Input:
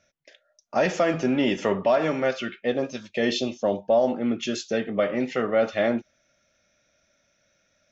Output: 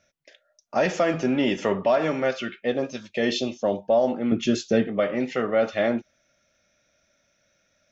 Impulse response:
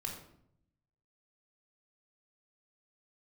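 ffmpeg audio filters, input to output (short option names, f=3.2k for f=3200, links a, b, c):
-filter_complex "[0:a]asettb=1/sr,asplit=3[a][b][c];[a]atrim=end=4.324[d];[b]atrim=start=4.32:end=4.88,asetpts=PTS-STARTPTS,afade=t=in:d=0.004:c=qsin,afade=t=out:st=0.556:d=0.004:c=qsin,lowshelf=f=380:g=10.5[e];[c]atrim=start=4.876[f];[d][e]acrossfade=d=0.004:c1=hsin:c2=qsin[g];[g][f]acrossfade=d=0.004:c1=qsin:c2=hsin"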